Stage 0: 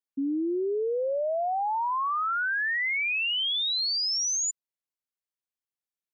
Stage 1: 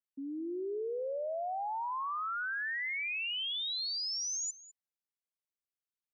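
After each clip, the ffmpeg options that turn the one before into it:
ffmpeg -i in.wav -filter_complex "[0:a]acrossover=split=280[link_01][link_02];[link_01]alimiter=level_in=17dB:limit=-24dB:level=0:latency=1,volume=-17dB[link_03];[link_03][link_02]amix=inputs=2:normalize=0,asplit=2[link_04][link_05];[link_05]adelay=204.1,volume=-15dB,highshelf=frequency=4000:gain=-4.59[link_06];[link_04][link_06]amix=inputs=2:normalize=0,volume=-8.5dB" out.wav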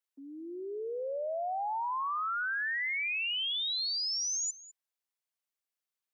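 ffmpeg -i in.wav -af "highpass=490,volume=3dB" out.wav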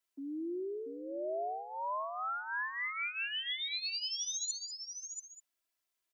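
ffmpeg -i in.wav -af "areverse,acompressor=threshold=-42dB:ratio=6,areverse,aecho=1:1:3:0.66,aecho=1:1:685:0.473,volume=2.5dB" out.wav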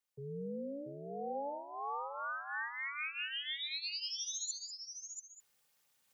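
ffmpeg -i in.wav -af "areverse,acompressor=mode=upward:threshold=-58dB:ratio=2.5,areverse,aeval=exprs='val(0)*sin(2*PI*140*n/s)':channel_layout=same" out.wav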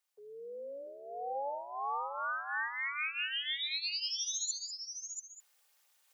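ffmpeg -i in.wav -af "highpass=frequency=530:width=0.5412,highpass=frequency=530:width=1.3066,volume=4dB" out.wav

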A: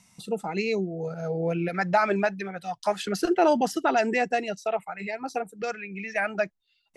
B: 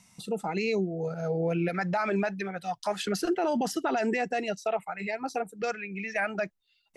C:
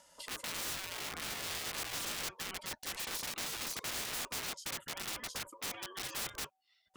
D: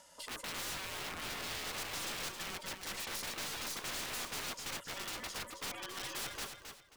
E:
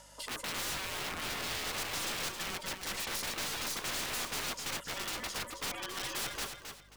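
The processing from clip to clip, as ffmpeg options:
ffmpeg -i in.wav -af "alimiter=limit=-19.5dB:level=0:latency=1:release=30" out.wav
ffmpeg -i in.wav -af "aeval=exprs='(mod(29.9*val(0)+1,2)-1)/29.9':channel_layout=same,aeval=exprs='val(0)*sin(2*PI*760*n/s)':channel_layout=same,afftfilt=real='re*lt(hypot(re,im),0.0282)':imag='im*lt(hypot(re,im),0.0282)':win_size=1024:overlap=0.75" out.wav
ffmpeg -i in.wav -af "aeval=exprs='0.0562*(cos(1*acos(clip(val(0)/0.0562,-1,1)))-cos(1*PI/2))+0.01*(cos(4*acos(clip(val(0)/0.0562,-1,1)))-cos(4*PI/2))':channel_layout=same,asoftclip=type=tanh:threshold=-38dB,aecho=1:1:268|536|804:0.422|0.118|0.0331,volume=2.5dB" out.wav
ffmpeg -i in.wav -af "aeval=exprs='val(0)+0.000501*(sin(2*PI*50*n/s)+sin(2*PI*2*50*n/s)/2+sin(2*PI*3*50*n/s)/3+sin(2*PI*4*50*n/s)/4+sin(2*PI*5*50*n/s)/5)':channel_layout=same,volume=4dB" out.wav

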